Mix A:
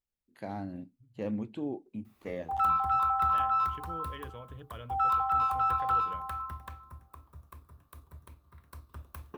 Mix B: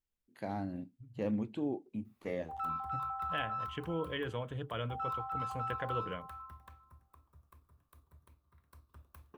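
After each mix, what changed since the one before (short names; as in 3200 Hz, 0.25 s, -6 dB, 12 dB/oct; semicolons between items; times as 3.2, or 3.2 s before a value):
second voice +8.0 dB; background -11.0 dB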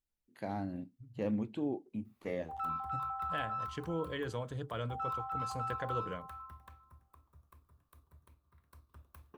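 second voice: add resonant high shelf 3700 Hz +7 dB, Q 3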